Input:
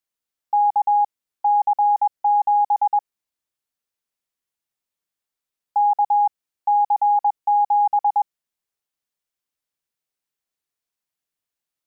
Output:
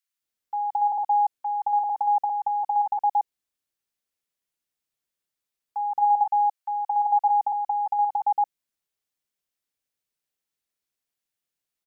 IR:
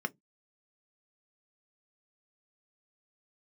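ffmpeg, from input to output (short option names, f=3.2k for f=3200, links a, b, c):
-filter_complex "[0:a]asplit=3[a][b][c];[a]afade=t=out:st=6.01:d=0.02[d];[b]highpass=f=640:w=0.5412,highpass=f=640:w=1.3066,afade=t=in:st=6.01:d=0.02,afade=t=out:st=7.05:d=0.02[e];[c]afade=t=in:st=7.05:d=0.02[f];[d][e][f]amix=inputs=3:normalize=0,acrossover=split=1000[g][h];[g]adelay=220[i];[i][h]amix=inputs=2:normalize=0"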